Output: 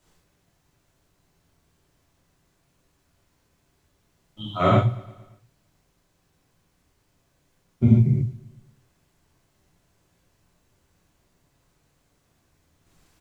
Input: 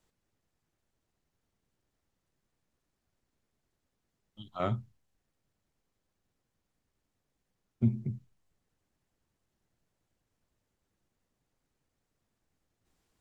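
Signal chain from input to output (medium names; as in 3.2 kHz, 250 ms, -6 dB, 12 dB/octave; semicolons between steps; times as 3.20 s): feedback delay 115 ms, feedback 59%, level -21 dB; gated-style reverb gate 160 ms flat, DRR -7 dB; trim +7.5 dB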